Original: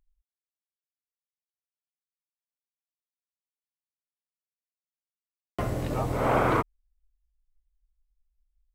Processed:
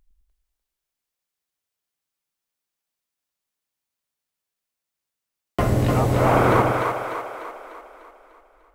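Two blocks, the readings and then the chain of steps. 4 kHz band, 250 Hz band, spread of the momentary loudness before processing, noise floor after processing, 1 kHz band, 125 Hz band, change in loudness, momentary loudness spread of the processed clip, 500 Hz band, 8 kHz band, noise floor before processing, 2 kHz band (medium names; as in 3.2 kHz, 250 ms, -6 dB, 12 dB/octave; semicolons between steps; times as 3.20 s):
+8.5 dB, +8.5 dB, 13 LU, -85 dBFS, +8.0 dB, +10.5 dB, +6.5 dB, 18 LU, +8.5 dB, +9.0 dB, under -85 dBFS, +7.5 dB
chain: in parallel at +1 dB: gain riding 0.5 s; on the sum: two-band feedback delay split 380 Hz, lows 105 ms, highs 298 ms, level -3.5 dB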